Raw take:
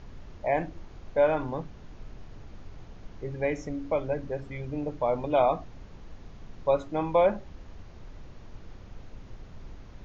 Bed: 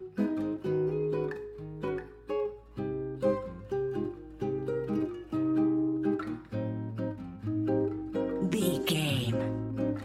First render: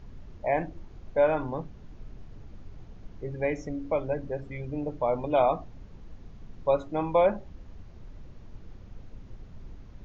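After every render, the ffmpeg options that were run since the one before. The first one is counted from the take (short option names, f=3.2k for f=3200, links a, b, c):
-af "afftdn=nr=6:nf=-47"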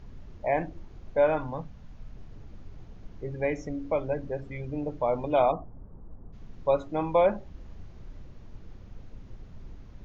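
-filter_complex "[0:a]asettb=1/sr,asplit=3[a][b][c];[a]atrim=end=1.384[d];[b]atrim=start=1.38:end=2.15,asetpts=PTS-STARTPTS,afade=t=in:d=0.004:c=qsin,afade=t=out:st=0.766:d=0.004:c=qsin,equalizer=f=360:t=o:w=0.44:g=-13.5[e];[c]atrim=start=2.146[f];[d][e]acrossfade=d=0.004:c1=hsin:c2=qsin[g];[g][f]acrossfade=d=0.004:c1=qsin:c2=hsin,asplit=3[h][i][j];[h]afade=t=out:st=5.51:d=0.02[k];[i]lowpass=f=1.2k:w=0.5412,lowpass=f=1.2k:w=1.3066,afade=t=in:st=5.51:d=0.02,afade=t=out:st=6.32:d=0.02[l];[j]afade=t=in:st=6.32:d=0.02[m];[k][l][m]amix=inputs=3:normalize=0,asettb=1/sr,asplit=3[n][o][p];[n]atrim=end=7.514[q];[o]atrim=start=7.51:end=8.23,asetpts=PTS-STARTPTS,afade=t=in:d=0.004:c=qsin,afade=t=out:st=0.716:d=0.004:c=qsin,asplit=2[r][s];[s]adelay=34,volume=-6dB[t];[r][t]amix=inputs=2:normalize=0,atrim=end_sample=31752[u];[p]atrim=start=8.226[v];[q][u]acrossfade=d=0.004:c1=hsin:c2=qsin[w];[w][v]acrossfade=d=0.004:c1=qsin:c2=hsin"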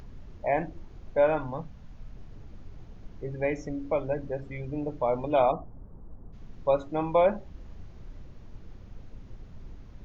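-af "acompressor=mode=upward:threshold=-45dB:ratio=2.5"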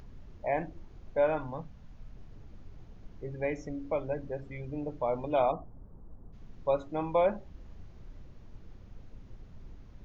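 -af "volume=-4dB"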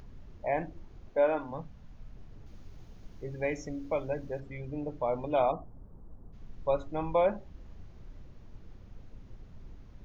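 -filter_complex "[0:a]asettb=1/sr,asplit=3[a][b][c];[a]atrim=end=1.084[d];[b]atrim=start=1.08:end=1.51,asetpts=PTS-STARTPTS,afade=t=in:d=0.004:c=qsin,afade=t=out:st=0.426:d=0.004:c=qsin,lowshelf=f=210:t=q:w=1.5:g=-7.5[e];[c]atrim=start=1.506[f];[d][e]acrossfade=d=0.004:c1=hsin:c2=qsin[g];[g][f]acrossfade=d=0.004:c1=qsin:c2=hsin,asettb=1/sr,asplit=3[h][i][j];[h]atrim=end=2.464[k];[i]atrim=start=2.46:end=4.4,asetpts=PTS-STARTPTS,afade=t=in:d=0.004:c=qsin,afade=t=out:st=1.936:d=0.004:c=qsin,highshelf=f=3.8k:g=10[l];[j]atrim=start=4.396[m];[k][l]acrossfade=d=0.004:c1=hsin:c2=qsin[n];[n][m]acrossfade=d=0.004:c1=qsin:c2=hsin,asettb=1/sr,asplit=3[o][p][q];[o]atrim=end=6.324[r];[p]atrim=start=6.32:end=7.13,asetpts=PTS-STARTPTS,afade=t=in:d=0.004:c=qsin,afade=t=out:st=0.806:d=0.004:c=qsin,asubboost=boost=7.5:cutoff=130[s];[q]atrim=start=7.126[t];[r][s]acrossfade=d=0.004:c1=hsin:c2=qsin[u];[u][t]acrossfade=d=0.004:c1=qsin:c2=hsin"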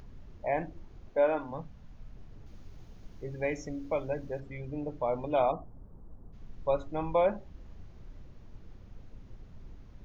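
-af anull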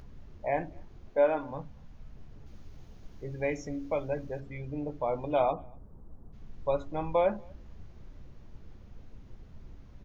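-filter_complex "[0:a]asplit=2[a][b];[b]adelay=14,volume=-12dB[c];[a][c]amix=inputs=2:normalize=0,asplit=2[d][e];[e]adelay=239.1,volume=-29dB,highshelf=f=4k:g=-5.38[f];[d][f]amix=inputs=2:normalize=0"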